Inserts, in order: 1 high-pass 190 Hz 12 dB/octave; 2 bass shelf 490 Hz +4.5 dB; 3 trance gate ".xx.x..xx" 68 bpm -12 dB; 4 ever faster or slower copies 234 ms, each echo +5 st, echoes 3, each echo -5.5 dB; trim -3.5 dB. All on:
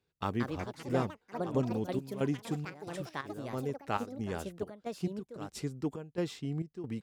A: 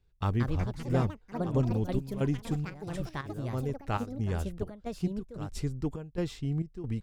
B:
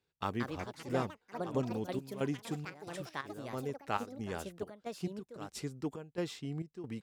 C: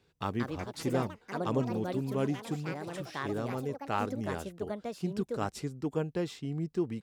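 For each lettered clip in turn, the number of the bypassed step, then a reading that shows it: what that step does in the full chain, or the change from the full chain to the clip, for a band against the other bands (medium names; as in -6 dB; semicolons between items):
1, 125 Hz band +8.0 dB; 2, 125 Hz band -3.5 dB; 3, crest factor change -2.0 dB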